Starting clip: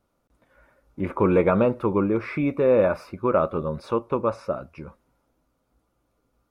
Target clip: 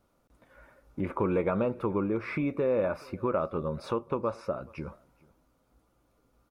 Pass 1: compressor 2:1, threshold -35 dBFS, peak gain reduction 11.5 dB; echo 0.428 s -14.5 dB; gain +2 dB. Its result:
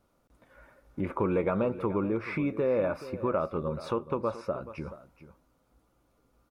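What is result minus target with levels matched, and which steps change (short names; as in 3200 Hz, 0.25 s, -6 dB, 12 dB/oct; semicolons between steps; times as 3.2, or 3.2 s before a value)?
echo-to-direct +10.5 dB
change: echo 0.428 s -25 dB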